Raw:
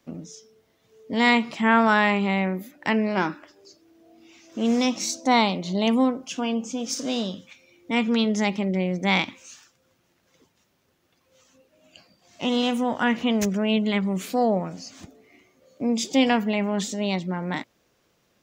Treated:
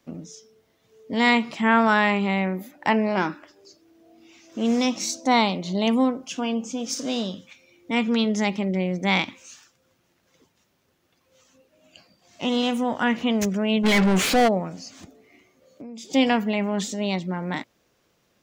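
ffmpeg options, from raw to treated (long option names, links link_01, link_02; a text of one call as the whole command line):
ffmpeg -i in.wav -filter_complex "[0:a]asettb=1/sr,asplit=3[link_01][link_02][link_03];[link_01]atrim=end=2.584[link_04];[link_02]atrim=start=2.58:end=3.16,asetpts=PTS-STARTPTS,afade=type=in:duration=0.004:curve=qsin,afade=type=out:start_time=0.576:duration=0.004:curve=qsin,equalizer=frequency=830:width=1.8:gain=7.5[link_05];[link_03]atrim=start=3.156[link_06];[link_04][link_05]acrossfade=duration=0.004:curve1=hsin:curve2=qsin[link_07];[link_07][link_06]acrossfade=duration=0.004:curve1=qsin:curve2=hsin,asplit=3[link_08][link_09][link_10];[link_08]afade=type=out:start_time=13.83:duration=0.02[link_11];[link_09]asplit=2[link_12][link_13];[link_13]highpass=frequency=720:poles=1,volume=32dB,asoftclip=type=tanh:threshold=-11.5dB[link_14];[link_12][link_14]amix=inputs=2:normalize=0,lowpass=frequency=3600:poles=1,volume=-6dB,afade=type=in:start_time=13.83:duration=0.02,afade=type=out:start_time=14.47:duration=0.02[link_15];[link_10]afade=type=in:start_time=14.47:duration=0.02[link_16];[link_11][link_15][link_16]amix=inputs=3:normalize=0,asettb=1/sr,asplit=3[link_17][link_18][link_19];[link_17]atrim=end=14.974[link_20];[link_18]atrim=start=14.97:end=16.1,asetpts=PTS-STARTPTS,afade=type=in:duration=0.004:curve=qsin,afade=type=out:start_time=1.126:duration=0.004:curve=qsin,acompressor=threshold=-37dB:ratio=6:attack=3.2:release=140:knee=1:detection=peak[link_21];[link_19]atrim=start=16.096[link_22];[link_20][link_21]acrossfade=duration=0.004:curve1=hsin:curve2=qsin[link_23];[link_23][link_22]acrossfade=duration=0.004:curve1=qsin:curve2=hsin" out.wav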